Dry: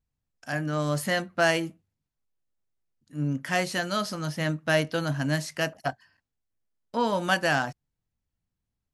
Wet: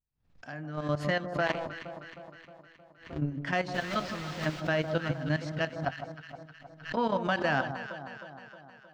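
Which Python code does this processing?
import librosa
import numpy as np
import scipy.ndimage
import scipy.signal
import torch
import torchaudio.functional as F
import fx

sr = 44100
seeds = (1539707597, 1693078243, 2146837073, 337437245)

y = fx.cycle_switch(x, sr, every=2, mode='muted', at=(1.45, 3.17), fade=0.02)
y = fx.level_steps(y, sr, step_db=13)
y = fx.quant_dither(y, sr, seeds[0], bits=6, dither='triangular', at=(3.73, 4.59), fade=0.02)
y = fx.air_absorb(y, sr, metres=190.0)
y = fx.echo_alternate(y, sr, ms=156, hz=1200.0, feedback_pct=75, wet_db=-8.5)
y = fx.pre_swell(y, sr, db_per_s=130.0)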